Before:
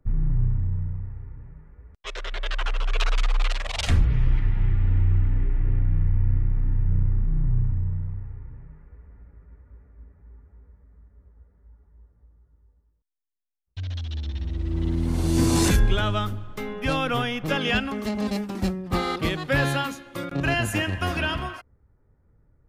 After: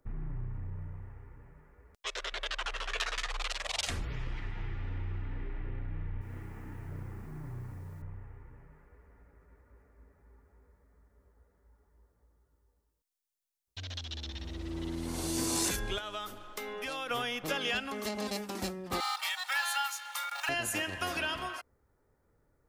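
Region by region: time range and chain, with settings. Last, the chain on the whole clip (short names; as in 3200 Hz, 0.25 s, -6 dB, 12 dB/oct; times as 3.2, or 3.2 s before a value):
2.74–3.31 bell 1800 Hz +10 dB 0.22 oct + doubler 17 ms -13 dB
6.21–8.02 requantised 12-bit, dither none + HPF 150 Hz 6 dB/oct
15.98–17.11 bell 100 Hz -12 dB 1.8 oct + compressor 3:1, threshold -33 dBFS
19–20.49 G.711 law mismatch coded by mu + steep high-pass 700 Hz 72 dB/oct + comb 2.2 ms, depth 70%
whole clip: tone controls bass -13 dB, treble +7 dB; compressor 2:1, threshold -36 dBFS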